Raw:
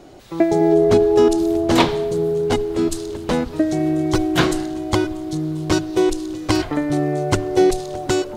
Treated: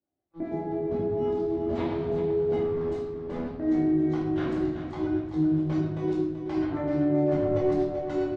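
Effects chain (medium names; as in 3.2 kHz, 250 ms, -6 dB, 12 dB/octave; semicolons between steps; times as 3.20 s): high-pass 45 Hz 24 dB/octave; gate -24 dBFS, range -43 dB; compression, threshold -22 dBFS, peak gain reduction 12 dB; peak limiter -20 dBFS, peak gain reduction 12 dB; 7.28–8.02 s: waveshaping leveller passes 1; harmonic tremolo 7.6 Hz, depth 70%, crossover 500 Hz; 2.59–3.45 s: overload inside the chain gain 34 dB; tape spacing loss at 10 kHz 33 dB; feedback delay 382 ms, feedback 49%, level -9.5 dB; simulated room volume 300 m³, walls mixed, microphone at 2.4 m; trim -3 dB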